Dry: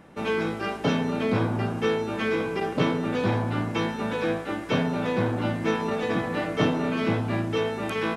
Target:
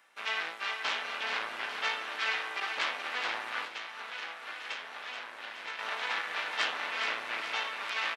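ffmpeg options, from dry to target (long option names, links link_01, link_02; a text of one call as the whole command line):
ffmpeg -i in.wav -filter_complex "[0:a]acrossover=split=4300[link_01][link_02];[link_02]acompressor=threshold=-60dB:ratio=4:attack=1:release=60[link_03];[link_01][link_03]amix=inputs=2:normalize=0,aeval=exprs='0.316*(cos(1*acos(clip(val(0)/0.316,-1,1)))-cos(1*PI/2))+0.112*(cos(6*acos(clip(val(0)/0.316,-1,1)))-cos(6*PI/2))':channel_layout=same,aecho=1:1:423|846|1269|1692|2115|2538|2961:0.447|0.25|0.14|0.0784|0.0439|0.0246|0.0138,asettb=1/sr,asplit=3[link_04][link_05][link_06];[link_04]atrim=end=3.654[link_07];[link_05]atrim=start=3.65:end=5.79,asetpts=PTS-STARTPTS,afade=type=in:duration=0.004:curve=qsin,afade=type=out:start_time=2.136:duration=0.004:curve=qsin,acompressor=threshold=-24dB:ratio=3[link_08];[link_06]atrim=start=5.786[link_09];[link_07][link_08]acrossfade=duration=0.004:curve1=hsin:curve2=qsin[link_10];[link_10][link_09]acrossfade=duration=0.004:curve1=qsin:curve2=hsin,highpass=1500,volume=-3dB" out.wav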